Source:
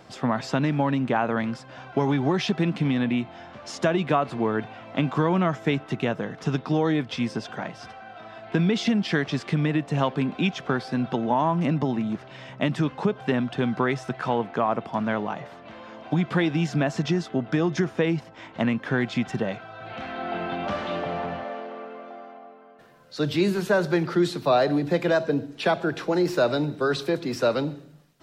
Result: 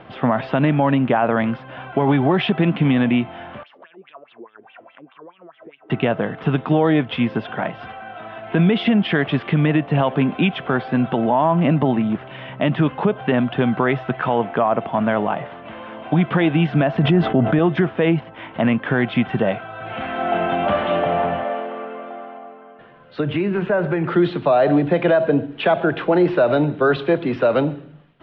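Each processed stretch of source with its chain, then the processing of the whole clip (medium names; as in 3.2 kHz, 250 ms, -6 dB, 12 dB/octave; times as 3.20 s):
3.63–5.90 s: compression 5:1, threshold -37 dBFS + wah-wah 4.8 Hz 340–3400 Hz, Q 5.3
16.97–17.59 s: expander -39 dBFS + tilt EQ -1.5 dB/octave + level flattener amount 50%
23.20–24.08 s: high-order bell 4.3 kHz -9 dB 1.1 oct + compression 10:1, threshold -23 dBFS
whole clip: Chebyshev low-pass 3.2 kHz, order 4; dynamic bell 650 Hz, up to +5 dB, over -37 dBFS, Q 2.9; peak limiter -15.5 dBFS; trim +8 dB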